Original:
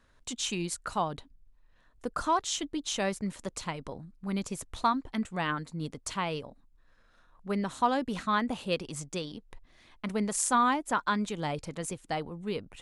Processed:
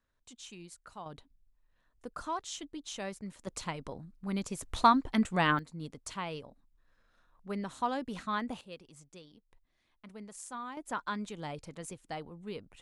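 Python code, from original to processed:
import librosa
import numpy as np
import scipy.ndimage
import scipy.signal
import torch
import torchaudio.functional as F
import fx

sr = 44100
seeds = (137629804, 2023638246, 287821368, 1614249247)

y = fx.gain(x, sr, db=fx.steps((0.0, -16.0), (1.06, -9.0), (3.47, -2.0), (4.63, 4.0), (5.59, -6.0), (8.61, -17.0), (10.77, -7.5)))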